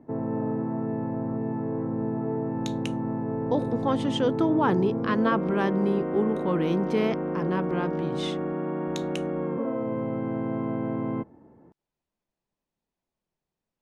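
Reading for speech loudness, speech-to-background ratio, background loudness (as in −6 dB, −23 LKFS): −27.5 LKFS, 2.5 dB, −30.0 LKFS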